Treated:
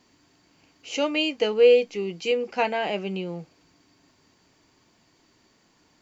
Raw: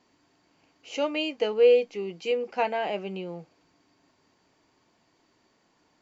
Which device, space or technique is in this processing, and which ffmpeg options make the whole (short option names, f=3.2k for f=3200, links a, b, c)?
smiley-face EQ: -af "lowshelf=f=140:g=4,equalizer=f=710:t=o:w=1.8:g=-4,highshelf=f=5.5k:g=5,volume=5dB"